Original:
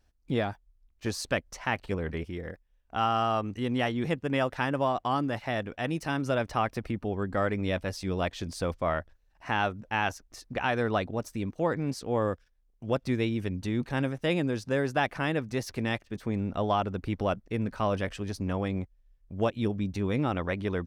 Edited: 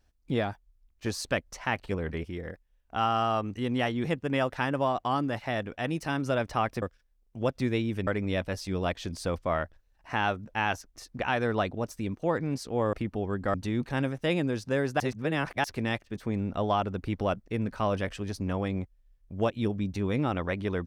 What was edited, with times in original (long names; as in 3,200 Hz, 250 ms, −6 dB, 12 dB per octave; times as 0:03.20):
0:06.82–0:07.43: swap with 0:12.29–0:13.54
0:15.00–0:15.64: reverse